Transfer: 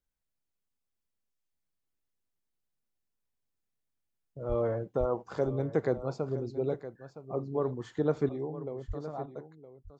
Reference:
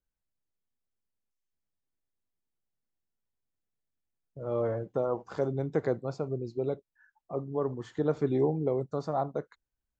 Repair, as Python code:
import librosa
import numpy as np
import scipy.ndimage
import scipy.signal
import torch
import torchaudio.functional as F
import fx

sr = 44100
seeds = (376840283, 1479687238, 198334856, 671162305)

y = fx.fix_deplosive(x, sr, at_s=(4.48, 4.99, 8.87))
y = fx.fix_echo_inverse(y, sr, delay_ms=965, level_db=-13.5)
y = fx.fix_level(y, sr, at_s=8.29, step_db=10.0)